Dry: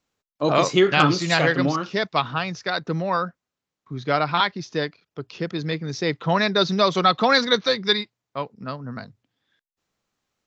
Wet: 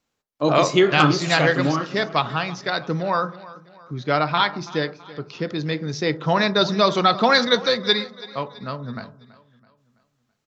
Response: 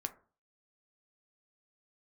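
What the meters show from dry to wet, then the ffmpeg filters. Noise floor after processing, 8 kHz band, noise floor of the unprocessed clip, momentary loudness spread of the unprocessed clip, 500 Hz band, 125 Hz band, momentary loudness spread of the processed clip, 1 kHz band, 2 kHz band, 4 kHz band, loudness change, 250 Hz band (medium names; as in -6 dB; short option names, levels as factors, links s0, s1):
-74 dBFS, no reading, under -85 dBFS, 15 LU, +1.5 dB, +1.5 dB, 15 LU, +1.0 dB, +1.0 dB, +1.0 dB, +1.0 dB, +1.0 dB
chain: -filter_complex "[0:a]aecho=1:1:330|660|990|1320:0.112|0.0505|0.0227|0.0102,asplit=2[s0][s1];[1:a]atrim=start_sample=2205,asetrate=34839,aresample=44100[s2];[s1][s2]afir=irnorm=-1:irlink=0,volume=1.41[s3];[s0][s3]amix=inputs=2:normalize=0,volume=0.473"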